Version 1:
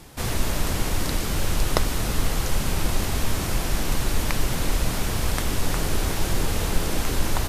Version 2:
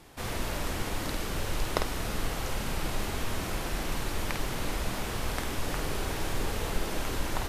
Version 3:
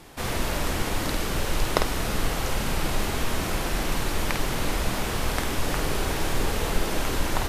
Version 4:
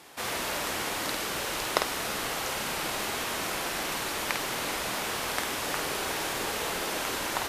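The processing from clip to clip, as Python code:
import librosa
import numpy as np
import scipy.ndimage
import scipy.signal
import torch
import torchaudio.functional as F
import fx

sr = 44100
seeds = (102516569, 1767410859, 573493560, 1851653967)

y1 = fx.bass_treble(x, sr, bass_db=-5, treble_db=-5)
y1 = fx.doubler(y1, sr, ms=50.0, db=-5.5)
y1 = y1 * librosa.db_to_amplitude(-5.5)
y2 = fx.hum_notches(y1, sr, base_hz=50, count=2)
y2 = y2 * librosa.db_to_amplitude(6.0)
y3 = fx.highpass(y2, sr, hz=630.0, slope=6)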